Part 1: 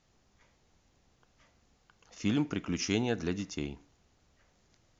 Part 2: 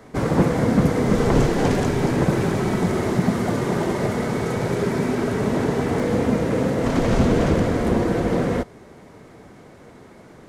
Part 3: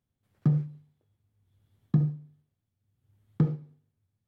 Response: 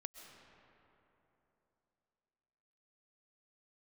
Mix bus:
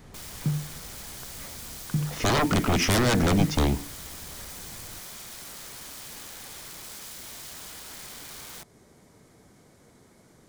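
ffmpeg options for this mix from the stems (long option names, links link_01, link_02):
-filter_complex "[0:a]lowpass=2500,aeval=exprs='0.133*sin(PI/2*7.08*val(0)/0.133)':channel_layout=same,volume=-2.5dB[link_01];[1:a]highshelf=frequency=4100:gain=9.5,acompressor=threshold=-26dB:ratio=1.5,aeval=exprs='(mod(23.7*val(0)+1,2)-1)/23.7':channel_layout=same,volume=-13.5dB[link_02];[2:a]volume=-7dB[link_03];[link_01][link_02][link_03]amix=inputs=3:normalize=0,bass=frequency=250:gain=4,treble=frequency=4000:gain=6,bandreject=frequency=2700:width=19"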